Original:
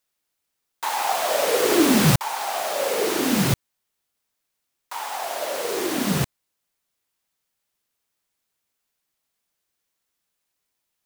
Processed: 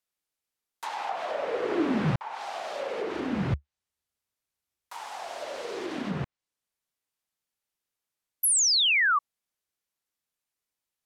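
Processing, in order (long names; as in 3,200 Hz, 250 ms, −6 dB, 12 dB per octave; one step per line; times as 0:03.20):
treble cut that deepens with the level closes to 2,100 Hz, closed at −18.5 dBFS
0:03.11–0:05.63: parametric band 72 Hz +13 dB 0.79 octaves
0:08.43–0:09.19: sound drawn into the spectrogram fall 1,100–12,000 Hz −14 dBFS
level −8.5 dB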